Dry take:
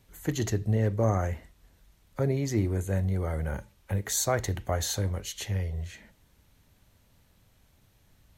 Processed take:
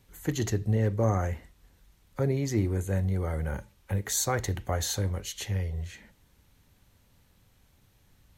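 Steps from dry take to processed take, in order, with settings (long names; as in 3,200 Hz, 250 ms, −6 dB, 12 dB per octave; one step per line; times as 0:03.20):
notch filter 640 Hz, Q 12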